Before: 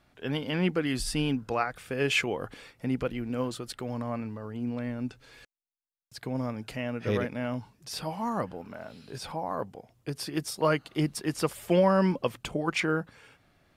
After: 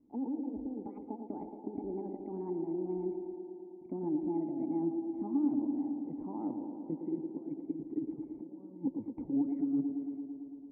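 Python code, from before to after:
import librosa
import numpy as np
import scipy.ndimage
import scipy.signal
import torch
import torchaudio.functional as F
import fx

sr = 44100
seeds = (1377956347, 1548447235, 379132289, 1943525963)

p1 = fx.speed_glide(x, sr, from_pct=178, to_pct=79)
p2 = fx.high_shelf(p1, sr, hz=3200.0, db=6.5)
p3 = fx.over_compress(p2, sr, threshold_db=-31.0, ratio=-0.5)
p4 = fx.formant_cascade(p3, sr, vowel='u')
p5 = fx.air_absorb(p4, sr, metres=390.0)
p6 = fx.small_body(p5, sr, hz=(260.0, 2000.0), ring_ms=35, db=9)
y = p6 + fx.echo_wet_bandpass(p6, sr, ms=112, feedback_pct=79, hz=440.0, wet_db=-5.5, dry=0)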